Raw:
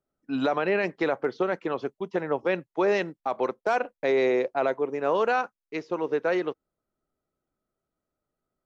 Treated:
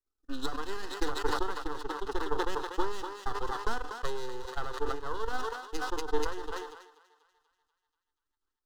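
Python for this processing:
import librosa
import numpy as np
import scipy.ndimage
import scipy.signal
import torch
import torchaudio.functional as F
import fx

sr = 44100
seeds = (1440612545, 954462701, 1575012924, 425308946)

y = fx.peak_eq(x, sr, hz=4000.0, db=12.0, octaves=1.9)
y = fx.comb_fb(y, sr, f0_hz=150.0, decay_s=0.55, harmonics='all', damping=0.0, mix_pct=70)
y = np.maximum(y, 0.0)
y = fx.low_shelf(y, sr, hz=62.0, db=8.0)
y = fx.transient(y, sr, attack_db=11, sustain_db=-10)
y = fx.fixed_phaser(y, sr, hz=620.0, stages=6)
y = fx.echo_thinned(y, sr, ms=242, feedback_pct=56, hz=490.0, wet_db=-12)
y = fx.sustainer(y, sr, db_per_s=68.0)
y = y * 10.0 ** (-2.0 / 20.0)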